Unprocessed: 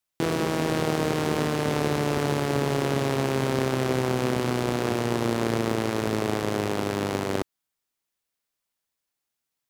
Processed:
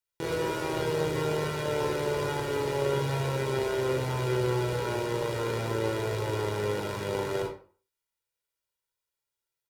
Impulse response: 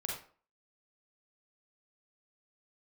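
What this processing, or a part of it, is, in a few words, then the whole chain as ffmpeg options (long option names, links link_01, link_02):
microphone above a desk: -filter_complex "[0:a]aecho=1:1:2.1:0.66[link_01];[1:a]atrim=start_sample=2205[link_02];[link_01][link_02]afir=irnorm=-1:irlink=0,volume=-7dB"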